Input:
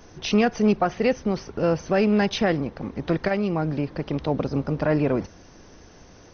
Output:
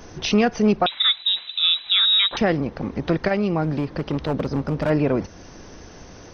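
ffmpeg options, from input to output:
ffmpeg -i in.wav -filter_complex "[0:a]asplit=2[link_01][link_02];[link_02]acompressor=threshold=-32dB:ratio=6,volume=1dB[link_03];[link_01][link_03]amix=inputs=2:normalize=0,asettb=1/sr,asplit=3[link_04][link_05][link_06];[link_04]atrim=end=0.864[link_07];[link_05]atrim=start=0.86:end=2.37,asetpts=PTS-STARTPTS,afade=type=in:duration=0.004:curve=qsin,afade=type=out:start_time=1.506:duration=0.004:curve=qsin,lowpass=frequency=3400:width_type=q:width=0.5098,lowpass=frequency=3400:width_type=q:width=0.6013,lowpass=frequency=3400:width_type=q:width=0.9,lowpass=frequency=3400:width_type=q:width=2.563,afreqshift=-4000[link_08];[link_06]atrim=start=2.366[link_09];[link_07][link_08]acrossfade=duration=0.004:curve1=hsin:curve2=qsin[link_10];[link_10][link_09]acrossfade=duration=0.004:curve1=qsin:curve2=hsin,asettb=1/sr,asplit=3[link_11][link_12][link_13];[link_11]atrim=end=3.634[link_14];[link_12]atrim=start=3.63:end=4.9,asetpts=PTS-STARTPTS,afade=type=in:duration=0.004:curve=qsin,afade=type=out:start_time=1.266:duration=0.004:curve=qsin,asoftclip=type=hard:threshold=-17dB[link_15];[link_13]atrim=start=4.896[link_16];[link_14][link_15]acrossfade=duration=0.004:curve1=hsin:curve2=qsin[link_17];[link_17][link_16]acrossfade=duration=0.004:curve1=qsin:curve2=hsin" out.wav

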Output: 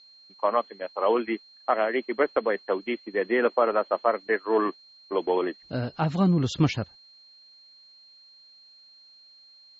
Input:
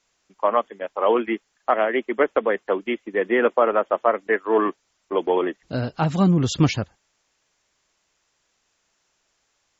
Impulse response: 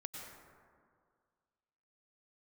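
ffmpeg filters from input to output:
-af "aeval=exprs='val(0)+0.00501*sin(2*PI*4200*n/s)':channel_layout=same,lowpass=5300,volume=-4dB"

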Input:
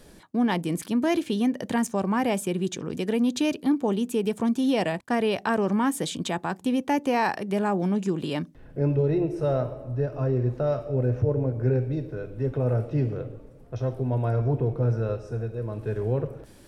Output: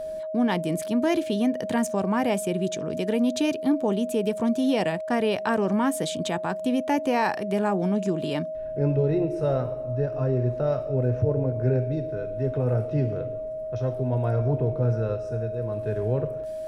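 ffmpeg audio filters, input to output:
ffmpeg -i in.wav -af "aeval=exprs='val(0)+0.0316*sin(2*PI*630*n/s)':channel_layout=same" out.wav

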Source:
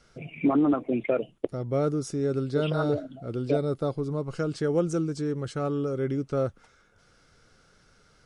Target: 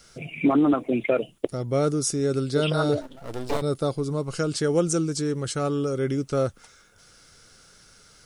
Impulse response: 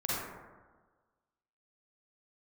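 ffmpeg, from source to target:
-filter_complex "[0:a]asettb=1/sr,asplit=3[link_01][link_02][link_03];[link_01]atrim=end=3.014[link_04];[link_02]atrim=start=3.01:end=3.62,asetpts=PTS-STARTPTS,afade=type=in:duration=0.004:curve=qsin,afade=type=out:start_time=0.606:duration=0.004:curve=qsin,aeval=exprs='max(val(0),0)':channel_layout=same[link_05];[link_03]atrim=start=3.616[link_06];[link_04][link_05]acrossfade=duration=0.004:curve1=hsin:curve2=qsin[link_07];[link_07][link_06]acrossfade=duration=0.004:curve1=qsin:curve2=hsin,crystalizer=i=3.5:c=0,volume=2.5dB"

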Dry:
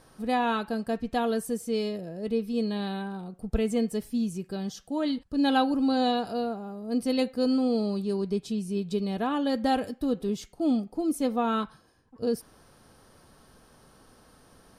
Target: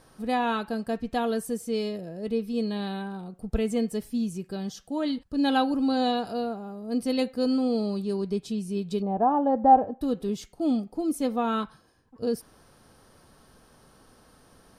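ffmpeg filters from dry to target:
ffmpeg -i in.wav -filter_complex "[0:a]asettb=1/sr,asplit=3[link_01][link_02][link_03];[link_01]atrim=end=9.024[link_04];[link_02]atrim=start=9.02:end=10.01,asetpts=PTS-STARTPTS,afade=type=in:duration=0.004:curve=qsin,afade=type=out:start_time=0.986:duration=0.004:curve=qsin,lowpass=frequency=810:width_type=q:width=3.8[link_05];[link_03]atrim=start=10.006[link_06];[link_04][link_05]acrossfade=duration=0.004:curve1=hsin:curve2=qsin[link_07];[link_07][link_06]acrossfade=duration=0.004:curve1=qsin:curve2=hsin" out.wav

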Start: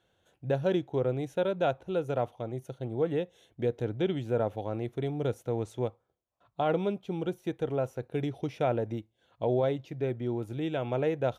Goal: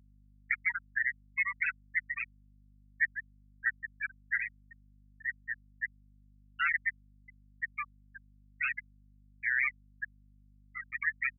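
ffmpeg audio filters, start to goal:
ffmpeg -i in.wav -filter_complex "[0:a]asplit=2[link_01][link_02];[link_02]aecho=0:1:258:0.188[link_03];[link_01][link_03]amix=inputs=2:normalize=0,aeval=exprs='0.15*(cos(1*acos(clip(val(0)/0.15,-1,1)))-cos(1*PI/2))+0.00168*(cos(4*acos(clip(val(0)/0.15,-1,1)))-cos(4*PI/2))+0.0596*(cos(6*acos(clip(val(0)/0.15,-1,1)))-cos(6*PI/2))+0.0335*(cos(7*acos(clip(val(0)/0.15,-1,1)))-cos(7*PI/2))':channel_layout=same,highpass=frequency=1800:width_type=q:width=2.8,asplit=2[link_04][link_05];[link_05]aecho=0:1:63|126:0.119|0.0297[link_06];[link_04][link_06]amix=inputs=2:normalize=0,asoftclip=type=tanh:threshold=-15.5dB,afftfilt=real='re*gte(hypot(re,im),0.158)':imag='im*gte(hypot(re,im),0.158)':win_size=1024:overlap=0.75,aeval=exprs='val(0)+0.001*(sin(2*PI*50*n/s)+sin(2*PI*2*50*n/s)/2+sin(2*PI*3*50*n/s)/3+sin(2*PI*4*50*n/s)/4+sin(2*PI*5*50*n/s)/5)':channel_layout=same" out.wav

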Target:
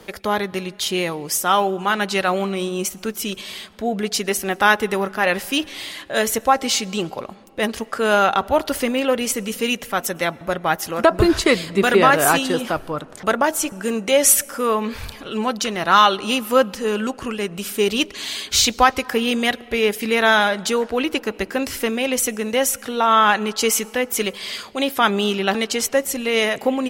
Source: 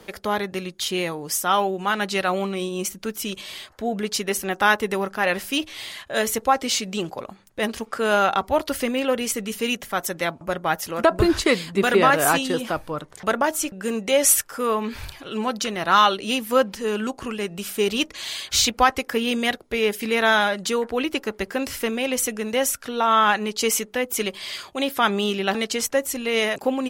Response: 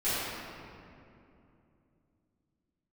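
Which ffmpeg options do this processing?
-filter_complex "[0:a]asplit=2[link_01][link_02];[1:a]atrim=start_sample=2205,adelay=98[link_03];[link_02][link_03]afir=irnorm=-1:irlink=0,volume=-34dB[link_04];[link_01][link_04]amix=inputs=2:normalize=0,volume=3dB"

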